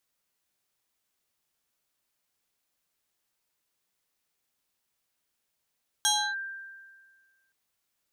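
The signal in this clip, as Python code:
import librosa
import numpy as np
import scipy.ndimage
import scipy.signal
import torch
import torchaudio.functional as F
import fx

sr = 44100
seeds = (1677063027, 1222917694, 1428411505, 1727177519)

y = fx.fm2(sr, length_s=1.47, level_db=-20, carrier_hz=1580.0, ratio=1.53, index=3.3, index_s=0.3, decay_s=1.67, shape='linear')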